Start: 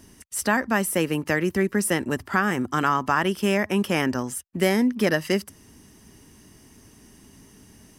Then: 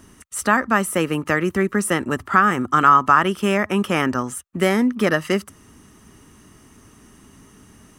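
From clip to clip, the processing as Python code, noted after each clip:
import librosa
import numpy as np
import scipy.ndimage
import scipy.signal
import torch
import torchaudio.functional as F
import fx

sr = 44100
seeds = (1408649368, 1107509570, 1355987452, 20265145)

y = fx.graphic_eq_31(x, sr, hz=(1250, 5000, 12500), db=(11, -7, -7))
y = y * 10.0 ** (2.5 / 20.0)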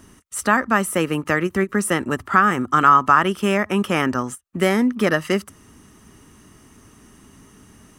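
y = fx.end_taper(x, sr, db_per_s=540.0)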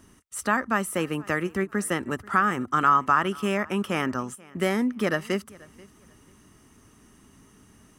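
y = fx.echo_feedback(x, sr, ms=485, feedback_pct=21, wet_db=-23.5)
y = y * 10.0 ** (-6.5 / 20.0)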